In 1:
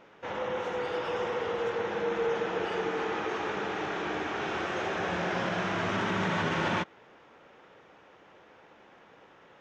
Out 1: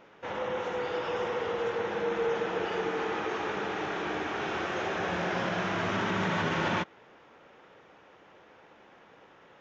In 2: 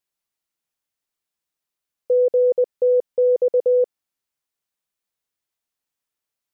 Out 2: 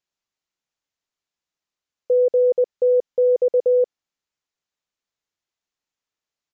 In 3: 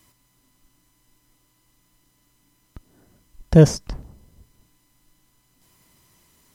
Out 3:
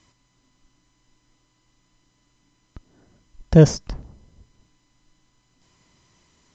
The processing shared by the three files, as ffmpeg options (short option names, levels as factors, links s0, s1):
-af "aresample=16000,aresample=44100"